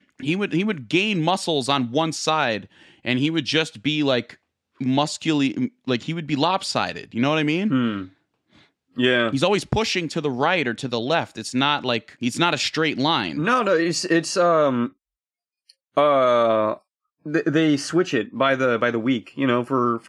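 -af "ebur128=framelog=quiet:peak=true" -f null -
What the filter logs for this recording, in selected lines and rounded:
Integrated loudness:
  I:         -21.6 LUFS
  Threshold: -32.0 LUFS
Loudness range:
  LRA:         2.7 LU
  Threshold: -42.1 LUFS
  LRA low:   -23.4 LUFS
  LRA high:  -20.7 LUFS
True peak:
  Peak:       -3.6 dBFS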